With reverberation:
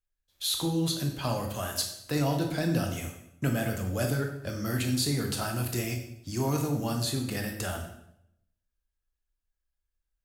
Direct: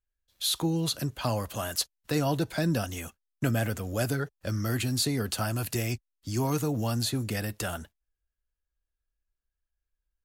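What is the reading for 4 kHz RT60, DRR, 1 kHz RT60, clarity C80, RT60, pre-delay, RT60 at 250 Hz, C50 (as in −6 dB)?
0.65 s, 3.0 dB, 0.70 s, 9.5 dB, 0.75 s, 16 ms, 0.85 s, 6.5 dB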